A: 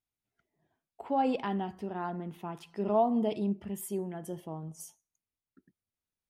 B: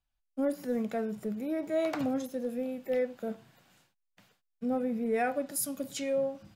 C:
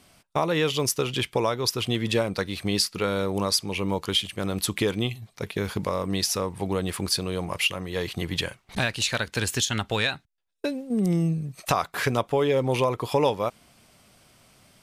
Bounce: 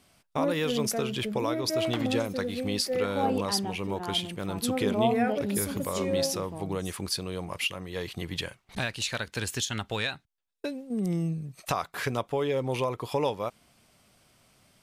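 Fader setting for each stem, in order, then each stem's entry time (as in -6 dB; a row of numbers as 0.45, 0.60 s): -0.5, +0.5, -5.5 dB; 2.05, 0.00, 0.00 s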